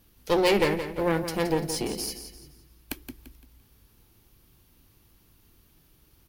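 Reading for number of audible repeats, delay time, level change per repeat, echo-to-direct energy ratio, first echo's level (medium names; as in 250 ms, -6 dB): 3, 171 ms, -9.5 dB, -9.5 dB, -10.0 dB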